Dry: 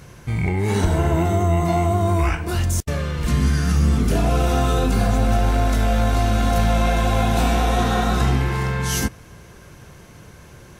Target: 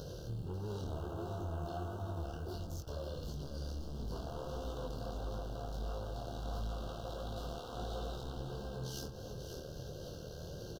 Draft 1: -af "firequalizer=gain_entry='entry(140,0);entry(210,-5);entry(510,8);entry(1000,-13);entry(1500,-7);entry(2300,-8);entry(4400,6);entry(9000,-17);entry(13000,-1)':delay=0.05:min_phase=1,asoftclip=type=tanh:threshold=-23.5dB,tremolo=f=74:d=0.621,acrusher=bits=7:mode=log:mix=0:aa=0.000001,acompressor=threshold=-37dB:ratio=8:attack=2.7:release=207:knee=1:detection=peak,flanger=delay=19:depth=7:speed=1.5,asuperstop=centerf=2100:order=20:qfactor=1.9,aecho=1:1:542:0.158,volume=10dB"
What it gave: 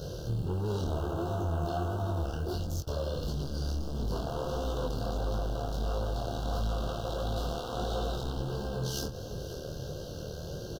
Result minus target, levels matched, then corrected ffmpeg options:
downward compressor: peak gain reduction −9 dB; echo-to-direct −7.5 dB
-af "firequalizer=gain_entry='entry(140,0);entry(210,-5);entry(510,8);entry(1000,-13);entry(1500,-7);entry(2300,-8);entry(4400,6);entry(9000,-17);entry(13000,-1)':delay=0.05:min_phase=1,asoftclip=type=tanh:threshold=-23.5dB,tremolo=f=74:d=0.621,acrusher=bits=7:mode=log:mix=0:aa=0.000001,acompressor=threshold=-47.5dB:ratio=8:attack=2.7:release=207:knee=1:detection=peak,flanger=delay=19:depth=7:speed=1.5,asuperstop=centerf=2100:order=20:qfactor=1.9,aecho=1:1:542:0.376,volume=10dB"

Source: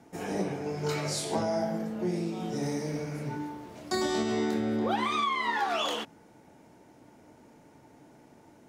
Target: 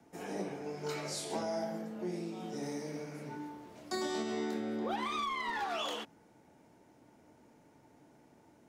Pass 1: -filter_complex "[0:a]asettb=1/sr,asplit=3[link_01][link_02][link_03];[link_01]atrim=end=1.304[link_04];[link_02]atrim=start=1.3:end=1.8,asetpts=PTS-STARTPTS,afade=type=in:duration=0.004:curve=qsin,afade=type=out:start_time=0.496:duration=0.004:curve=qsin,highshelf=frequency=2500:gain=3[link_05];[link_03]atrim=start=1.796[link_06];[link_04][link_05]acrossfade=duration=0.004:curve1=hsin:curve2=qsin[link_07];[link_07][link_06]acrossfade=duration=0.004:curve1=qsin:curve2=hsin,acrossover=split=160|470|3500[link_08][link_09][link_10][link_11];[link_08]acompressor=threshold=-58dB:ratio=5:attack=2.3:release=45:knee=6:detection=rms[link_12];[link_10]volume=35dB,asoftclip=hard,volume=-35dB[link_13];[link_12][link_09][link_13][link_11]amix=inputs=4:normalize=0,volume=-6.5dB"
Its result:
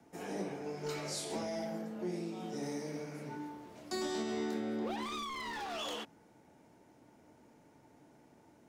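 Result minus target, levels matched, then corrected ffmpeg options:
gain into a clipping stage and back: distortion +13 dB
-filter_complex "[0:a]asettb=1/sr,asplit=3[link_01][link_02][link_03];[link_01]atrim=end=1.304[link_04];[link_02]atrim=start=1.3:end=1.8,asetpts=PTS-STARTPTS,afade=type=in:duration=0.004:curve=qsin,afade=type=out:start_time=0.496:duration=0.004:curve=qsin,highshelf=frequency=2500:gain=3[link_05];[link_03]atrim=start=1.796[link_06];[link_04][link_05]acrossfade=duration=0.004:curve1=hsin:curve2=qsin[link_07];[link_07][link_06]acrossfade=duration=0.004:curve1=qsin:curve2=hsin,acrossover=split=160|470|3500[link_08][link_09][link_10][link_11];[link_08]acompressor=threshold=-58dB:ratio=5:attack=2.3:release=45:knee=6:detection=rms[link_12];[link_10]volume=26dB,asoftclip=hard,volume=-26dB[link_13];[link_12][link_09][link_13][link_11]amix=inputs=4:normalize=0,volume=-6.5dB"

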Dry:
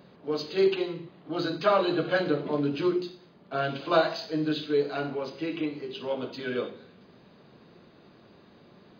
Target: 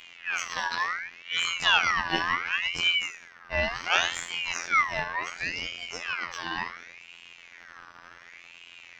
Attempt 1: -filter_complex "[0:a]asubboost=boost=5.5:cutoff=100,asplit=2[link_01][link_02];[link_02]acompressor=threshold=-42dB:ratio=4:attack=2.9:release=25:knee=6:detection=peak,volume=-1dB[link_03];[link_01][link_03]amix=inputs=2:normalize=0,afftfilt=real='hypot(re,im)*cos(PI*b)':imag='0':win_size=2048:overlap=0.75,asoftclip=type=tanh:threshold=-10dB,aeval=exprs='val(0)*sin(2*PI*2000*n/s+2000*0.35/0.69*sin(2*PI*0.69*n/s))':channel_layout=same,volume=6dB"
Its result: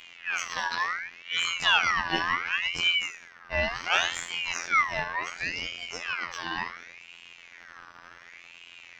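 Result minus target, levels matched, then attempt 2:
soft clipping: distortion +16 dB
-filter_complex "[0:a]asubboost=boost=5.5:cutoff=100,asplit=2[link_01][link_02];[link_02]acompressor=threshold=-42dB:ratio=4:attack=2.9:release=25:knee=6:detection=peak,volume=-1dB[link_03];[link_01][link_03]amix=inputs=2:normalize=0,afftfilt=real='hypot(re,im)*cos(PI*b)':imag='0':win_size=2048:overlap=0.75,asoftclip=type=tanh:threshold=-1dB,aeval=exprs='val(0)*sin(2*PI*2000*n/s+2000*0.35/0.69*sin(2*PI*0.69*n/s))':channel_layout=same,volume=6dB"

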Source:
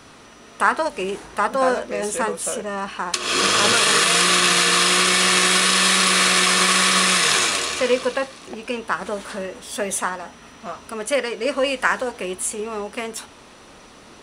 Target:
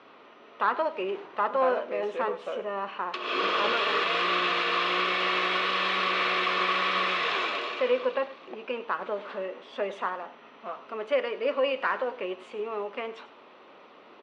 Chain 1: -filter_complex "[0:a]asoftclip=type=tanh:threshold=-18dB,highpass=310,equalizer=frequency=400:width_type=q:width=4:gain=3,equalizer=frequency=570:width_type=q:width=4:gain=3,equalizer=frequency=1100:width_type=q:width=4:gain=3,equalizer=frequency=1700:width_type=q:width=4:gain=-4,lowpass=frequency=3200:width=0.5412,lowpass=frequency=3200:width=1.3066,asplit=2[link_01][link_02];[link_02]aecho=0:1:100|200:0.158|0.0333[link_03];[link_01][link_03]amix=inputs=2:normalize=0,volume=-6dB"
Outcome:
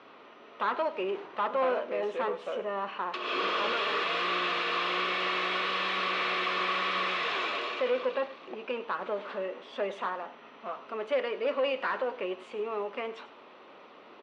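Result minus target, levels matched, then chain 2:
soft clipping: distortion +9 dB
-filter_complex "[0:a]asoftclip=type=tanh:threshold=-9.5dB,highpass=310,equalizer=frequency=400:width_type=q:width=4:gain=3,equalizer=frequency=570:width_type=q:width=4:gain=3,equalizer=frequency=1100:width_type=q:width=4:gain=3,equalizer=frequency=1700:width_type=q:width=4:gain=-4,lowpass=frequency=3200:width=0.5412,lowpass=frequency=3200:width=1.3066,asplit=2[link_01][link_02];[link_02]aecho=0:1:100|200:0.158|0.0333[link_03];[link_01][link_03]amix=inputs=2:normalize=0,volume=-6dB"

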